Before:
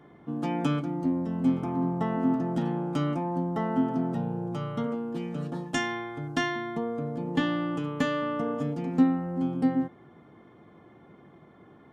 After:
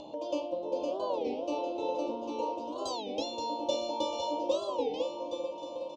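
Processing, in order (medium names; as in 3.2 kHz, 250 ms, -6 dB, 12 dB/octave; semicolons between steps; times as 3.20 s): FDN reverb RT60 1.1 s, low-frequency decay 0.9×, high-frequency decay 0.65×, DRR 0 dB; speed mistake 7.5 ips tape played at 15 ips; elliptic band-stop 1–2.9 kHz, stop band 80 dB; on a send: bouncing-ball echo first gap 510 ms, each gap 0.85×, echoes 5; on the sum: upward compressor, threshold -28 dBFS; low-pass 6 kHz 24 dB/octave; warped record 33 1/3 rpm, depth 250 cents; trim -7.5 dB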